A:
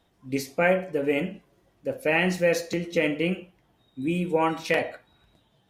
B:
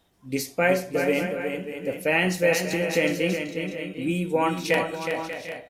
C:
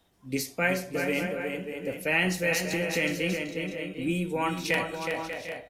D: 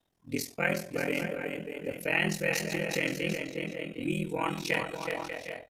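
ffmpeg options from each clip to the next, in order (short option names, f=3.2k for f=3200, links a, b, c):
-filter_complex "[0:a]highshelf=f=5.1k:g=7.5,asplit=2[a][b];[b]aecho=0:1:367|589|747|778:0.447|0.266|0.15|0.2[c];[a][c]amix=inputs=2:normalize=0"
-filter_complex "[0:a]asubboost=boost=2:cutoff=100,acrossover=split=300|990[a][b][c];[b]alimiter=level_in=1dB:limit=-24dB:level=0:latency=1:release=260,volume=-1dB[d];[a][d][c]amix=inputs=3:normalize=0,volume=-1.5dB"
-af "agate=range=-7dB:threshold=-43dB:ratio=16:detection=peak,aeval=exprs='val(0)*sin(2*PI*21*n/s)':c=same"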